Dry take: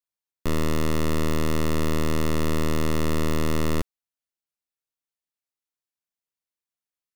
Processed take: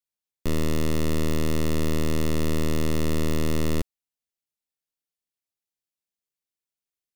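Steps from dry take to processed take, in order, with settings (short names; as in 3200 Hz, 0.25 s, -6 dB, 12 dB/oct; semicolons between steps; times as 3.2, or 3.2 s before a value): bell 1200 Hz -6.5 dB 1.3 oct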